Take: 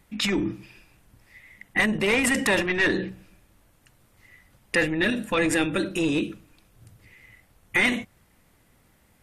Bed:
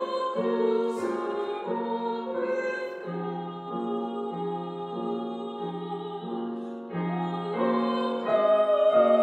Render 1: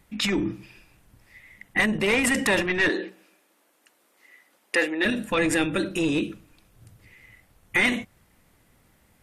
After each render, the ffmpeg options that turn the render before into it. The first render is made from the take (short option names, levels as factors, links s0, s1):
-filter_complex "[0:a]asettb=1/sr,asplit=3[s0][s1][s2];[s0]atrim=end=2.894[s3];[s1]atrim=start=2.89:end=5.05,asetpts=PTS-STARTPTS,afade=t=in:d=0.004:c=qsin,afade=t=out:st=2.156:d=0.004:c=qsin,highpass=f=290:w=0.5412,highpass=f=290:w=1.3066[s4];[s2]atrim=start=5.046[s5];[s3][s4]acrossfade=d=0.004:c1=hsin:c2=qsin[s6];[s6][s5]acrossfade=d=0.004:c1=qsin:c2=hsin"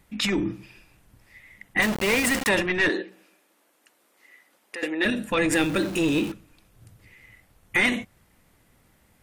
-filter_complex "[0:a]asettb=1/sr,asplit=3[s0][s1][s2];[s0]atrim=end=1.824[s3];[s1]atrim=start=1.82:end=2.49,asetpts=PTS-STARTPTS,afade=t=in:d=0.004:c=qsin,afade=t=out:st=0.666:d=0.004:c=qsin,aeval=exprs='val(0)*gte(abs(val(0)),0.0596)':c=same[s4];[s2]atrim=start=2.486[s5];[s3][s4]acrossfade=d=0.004:c1=hsin:c2=qsin[s6];[s6][s5]acrossfade=d=0.004:c1=qsin:c2=hsin,asettb=1/sr,asplit=3[s7][s8][s9];[s7]atrim=end=3.024[s10];[s8]atrim=start=3.02:end=4.83,asetpts=PTS-STARTPTS,afade=t=in:d=0.004:c=qsin,afade=t=out:st=1.806:d=0.004:c=qsin,acompressor=threshold=0.00708:ratio=2:attack=3.2:release=140:knee=1:detection=peak[s11];[s9]atrim=start=4.826[s12];[s10][s11]acrossfade=d=0.004:c1=hsin:c2=qsin[s13];[s13][s12]acrossfade=d=0.004:c1=qsin:c2=hsin,asettb=1/sr,asplit=3[s14][s15][s16];[s14]atrim=end=5.524[s17];[s15]atrim=start=5.52:end=6.32,asetpts=PTS-STARTPTS,afade=t=in:d=0.004:c=qsin,afade=t=out:st=0.796:d=0.004:c=qsin,aeval=exprs='val(0)+0.5*0.0251*sgn(val(0))':c=same[s18];[s16]atrim=start=6.316[s19];[s17][s18]acrossfade=d=0.004:c1=hsin:c2=qsin[s20];[s20][s19]acrossfade=d=0.004:c1=qsin:c2=hsin"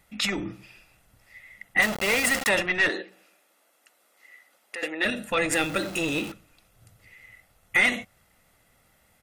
-af "lowshelf=f=280:g=-8,aecho=1:1:1.5:0.36"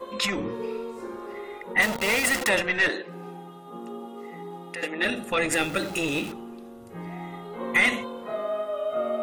-filter_complex "[1:a]volume=0.422[s0];[0:a][s0]amix=inputs=2:normalize=0"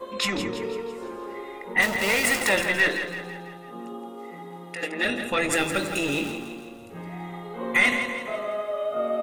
-filter_complex "[0:a]asplit=2[s0][s1];[s1]adelay=21,volume=0.251[s2];[s0][s2]amix=inputs=2:normalize=0,asplit=2[s3][s4];[s4]aecho=0:1:166|332|498|664|830|996:0.355|0.181|0.0923|0.0471|0.024|0.0122[s5];[s3][s5]amix=inputs=2:normalize=0"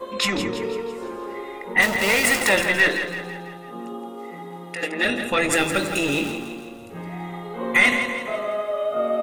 -af "volume=1.5"